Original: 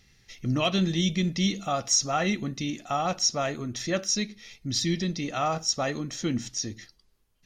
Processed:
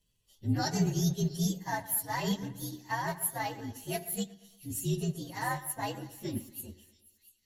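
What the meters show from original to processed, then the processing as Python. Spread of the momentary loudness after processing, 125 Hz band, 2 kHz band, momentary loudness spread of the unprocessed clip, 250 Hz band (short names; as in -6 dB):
11 LU, -2.5 dB, -5.0 dB, 9 LU, -5.5 dB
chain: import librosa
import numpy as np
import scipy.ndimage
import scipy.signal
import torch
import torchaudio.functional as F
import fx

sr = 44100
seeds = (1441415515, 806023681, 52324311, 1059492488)

y = fx.partial_stretch(x, sr, pct=122)
y = fx.hum_notches(y, sr, base_hz=60, count=6)
y = fx.echo_split(y, sr, split_hz=2800.0, low_ms=117, high_ms=687, feedback_pct=52, wet_db=-12.0)
y = fx.upward_expand(y, sr, threshold_db=-46.0, expansion=1.5)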